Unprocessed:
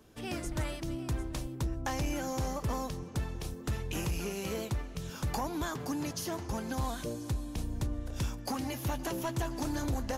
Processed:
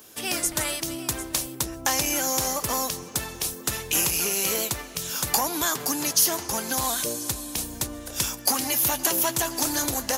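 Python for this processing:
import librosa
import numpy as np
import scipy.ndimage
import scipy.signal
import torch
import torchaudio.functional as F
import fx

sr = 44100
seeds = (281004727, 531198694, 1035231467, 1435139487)

y = fx.riaa(x, sr, side='recording')
y = F.gain(torch.from_numpy(y), 9.0).numpy()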